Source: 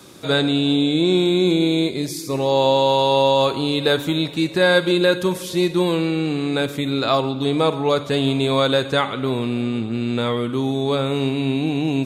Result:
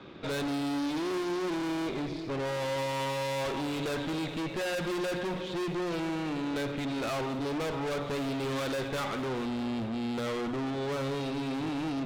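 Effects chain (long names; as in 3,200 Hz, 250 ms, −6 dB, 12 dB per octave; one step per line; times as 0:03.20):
low-pass filter 3,200 Hz 24 dB per octave
mains-hum notches 60/120/180 Hz
tube saturation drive 31 dB, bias 0.55
feedback echo with a high-pass in the loop 208 ms, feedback 72%, level −16.5 dB
convolution reverb RT60 0.35 s, pre-delay 45 ms, DRR 17.5 dB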